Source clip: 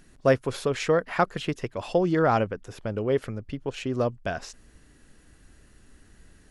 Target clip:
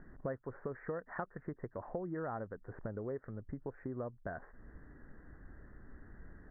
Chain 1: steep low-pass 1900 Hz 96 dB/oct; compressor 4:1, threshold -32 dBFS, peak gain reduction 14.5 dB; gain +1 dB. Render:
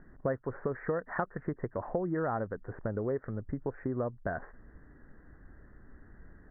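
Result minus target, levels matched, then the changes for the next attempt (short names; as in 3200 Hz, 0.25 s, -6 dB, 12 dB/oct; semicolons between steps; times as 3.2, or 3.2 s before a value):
compressor: peak gain reduction -8 dB
change: compressor 4:1, threshold -42.5 dBFS, peak gain reduction 22.5 dB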